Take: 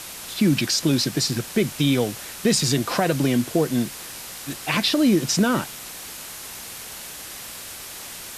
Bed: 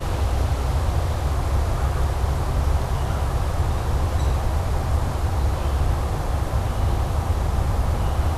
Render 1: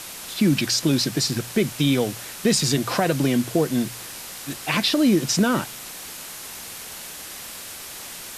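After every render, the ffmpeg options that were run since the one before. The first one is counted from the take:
-af "bandreject=f=60:t=h:w=4,bandreject=f=120:t=h:w=4"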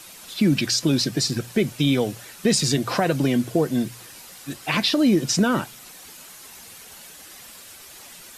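-af "afftdn=nr=9:nf=-37"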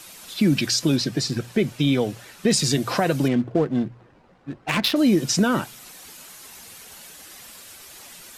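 -filter_complex "[0:a]asettb=1/sr,asplit=3[s0][s1][s2];[s0]atrim=end=0.964[s3];[s1]atrim=start=0.96:end=2.51,asetpts=PTS-STARTPTS,afade=t=in:d=0.004:c=qsin,afade=t=out:st=1.546:d=0.004:c=qsin,highshelf=f=6300:g=-8.5[s4];[s2]atrim=start=2.506[s5];[s3][s4]acrossfade=d=0.004:c1=hsin:c2=qsin[s6];[s6][s5]acrossfade=d=0.004:c1=qsin:c2=hsin,asettb=1/sr,asplit=3[s7][s8][s9];[s7]atrim=end=3.284[s10];[s8]atrim=start=3.28:end=4.96,asetpts=PTS-STARTPTS,afade=t=in:d=0.004:c=qsin,afade=t=out:st=1.676:d=0.004:c=qsin,adynamicsmooth=sensitivity=2.5:basefreq=770[s11];[s9]atrim=start=4.956[s12];[s10][s11]acrossfade=d=0.004:c1=hsin:c2=qsin[s13];[s13][s12]acrossfade=d=0.004:c1=qsin:c2=hsin"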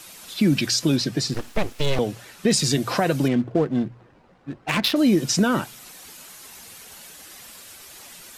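-filter_complex "[0:a]asettb=1/sr,asplit=3[s0][s1][s2];[s0]atrim=end=1.344[s3];[s1]atrim=start=1.34:end=1.99,asetpts=PTS-STARTPTS,afade=t=in:d=0.004:c=qsin,afade=t=out:st=0.646:d=0.004:c=qsin,aeval=exprs='abs(val(0))':c=same[s4];[s2]atrim=start=1.986[s5];[s3][s4]acrossfade=d=0.004:c1=hsin:c2=qsin[s6];[s6][s5]acrossfade=d=0.004:c1=qsin:c2=hsin"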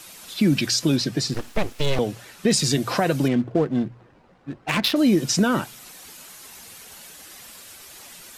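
-af anull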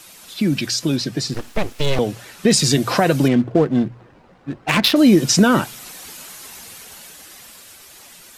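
-af "dynaudnorm=f=280:g=13:m=2.66"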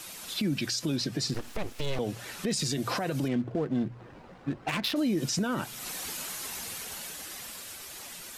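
-af "acompressor=threshold=0.0316:ratio=2,alimiter=limit=0.0891:level=0:latency=1:release=60"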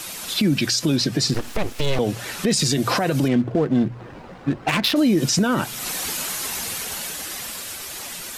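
-af "volume=3.16"

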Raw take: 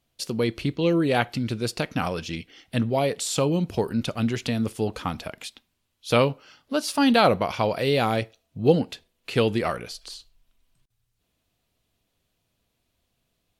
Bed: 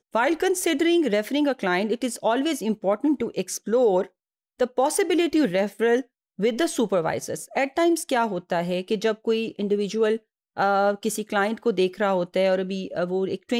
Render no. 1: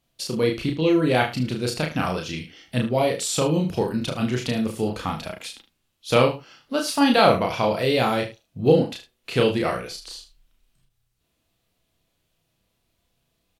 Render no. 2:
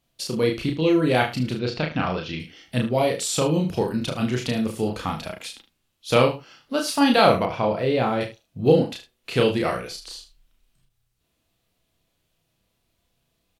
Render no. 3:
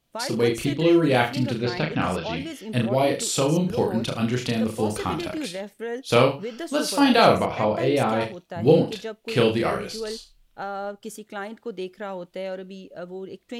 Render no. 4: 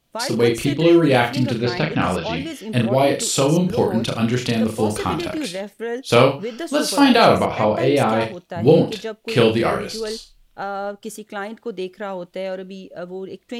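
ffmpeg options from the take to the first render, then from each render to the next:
-filter_complex "[0:a]asplit=2[s0][s1];[s1]adelay=32,volume=0.708[s2];[s0][s2]amix=inputs=2:normalize=0,asplit=2[s3][s4];[s4]aecho=0:1:38|76:0.299|0.211[s5];[s3][s5]amix=inputs=2:normalize=0"
-filter_complex "[0:a]asettb=1/sr,asplit=3[s0][s1][s2];[s0]atrim=end=1.594[s3];[s1]atrim=start=1.59:end=2.4,asetpts=PTS-STARTPTS,afade=t=in:d=0.004:c=qsin,afade=t=out:st=0.806:d=0.004:c=qsin,lowpass=f=4500:w=0.5412,lowpass=f=4500:w=1.3066[s4];[s2]atrim=start=2.396[s5];[s3][s4]acrossfade=d=0.004:c1=hsin:c2=qsin[s6];[s6][s5]acrossfade=d=0.004:c1=qsin:c2=hsin,asettb=1/sr,asplit=3[s7][s8][s9];[s7]atrim=end=7.454[s10];[s8]atrim=start=7.45:end=8.21,asetpts=PTS-STARTPTS,afade=t=in:d=0.004:c=qsin,afade=t=out:st=0.756:d=0.004:c=qsin,lowpass=f=1500:p=1[s11];[s9]atrim=start=8.206[s12];[s10][s11]acrossfade=d=0.004:c1=hsin:c2=qsin[s13];[s13][s12]acrossfade=d=0.004:c1=qsin:c2=hsin"
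-filter_complex "[1:a]volume=0.299[s0];[0:a][s0]amix=inputs=2:normalize=0"
-af "volume=1.68,alimiter=limit=0.794:level=0:latency=1"

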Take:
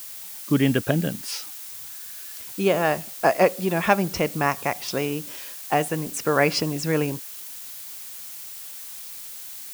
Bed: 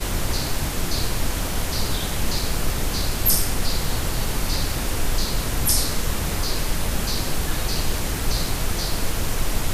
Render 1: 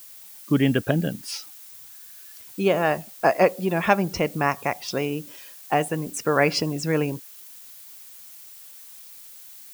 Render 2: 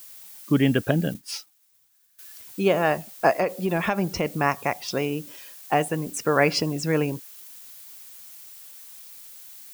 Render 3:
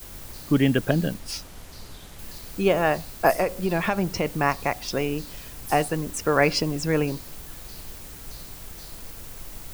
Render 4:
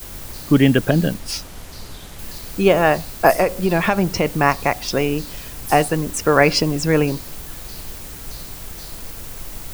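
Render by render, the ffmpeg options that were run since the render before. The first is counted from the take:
-af "afftdn=nr=8:nf=-38"
-filter_complex "[0:a]asettb=1/sr,asplit=3[s0][s1][s2];[s0]atrim=end=1.144[s3];[s1]atrim=start=1.14:end=2.19,asetpts=PTS-STARTPTS,afade=t=in:d=0.004:c=qsin,afade=t=out:st=1.046:d=0.004:c=qsin,agate=range=0.0224:threshold=0.0224:ratio=3:release=100:detection=peak[s4];[s2]atrim=start=2.186[s5];[s3][s4]acrossfade=d=0.004:c1=hsin:c2=qsin[s6];[s6][s5]acrossfade=d=0.004:c1=qsin:c2=hsin,asettb=1/sr,asplit=3[s7][s8][s9];[s7]atrim=end=3.324[s10];[s8]atrim=start=3.32:end=4.26,asetpts=PTS-STARTPTS,afade=t=in:d=0.004:c=qsin,afade=t=out:st=0.936:d=0.004:c=qsin,acompressor=threshold=0.126:ratio=10:attack=3.2:release=140:knee=1:detection=peak[s11];[s9]atrim=start=4.256[s12];[s10][s11]acrossfade=d=0.004:c1=hsin:c2=qsin[s13];[s13][s12]acrossfade=d=0.004:c1=qsin:c2=hsin"
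-filter_complex "[1:a]volume=0.119[s0];[0:a][s0]amix=inputs=2:normalize=0"
-af "volume=2.11,alimiter=limit=0.891:level=0:latency=1"

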